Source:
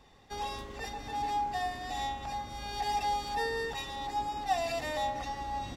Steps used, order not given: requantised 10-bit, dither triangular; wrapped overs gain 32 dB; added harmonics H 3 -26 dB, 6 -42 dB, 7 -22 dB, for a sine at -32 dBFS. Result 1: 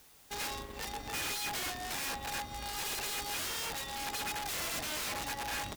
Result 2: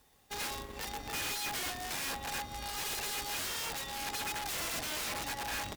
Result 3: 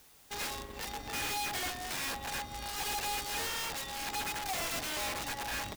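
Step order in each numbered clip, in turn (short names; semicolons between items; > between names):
wrapped overs > added harmonics > requantised; requantised > wrapped overs > added harmonics; added harmonics > requantised > wrapped overs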